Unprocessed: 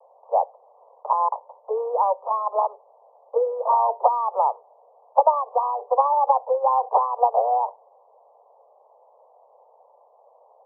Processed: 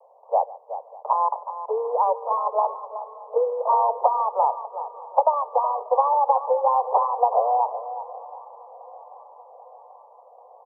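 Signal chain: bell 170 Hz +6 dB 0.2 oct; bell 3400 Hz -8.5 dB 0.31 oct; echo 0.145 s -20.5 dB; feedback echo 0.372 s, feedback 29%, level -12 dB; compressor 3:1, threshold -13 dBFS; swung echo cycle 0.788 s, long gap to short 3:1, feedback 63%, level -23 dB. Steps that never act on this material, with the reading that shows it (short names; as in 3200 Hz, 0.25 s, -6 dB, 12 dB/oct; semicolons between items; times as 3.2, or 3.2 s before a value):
bell 170 Hz: input band starts at 400 Hz; bell 3400 Hz: input band ends at 1300 Hz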